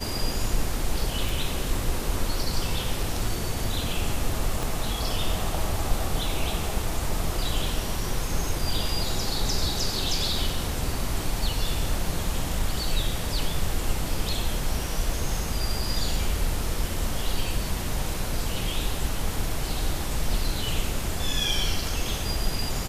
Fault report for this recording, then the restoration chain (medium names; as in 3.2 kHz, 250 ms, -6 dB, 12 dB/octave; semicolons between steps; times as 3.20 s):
1.29 s: pop
4.63 s: pop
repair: de-click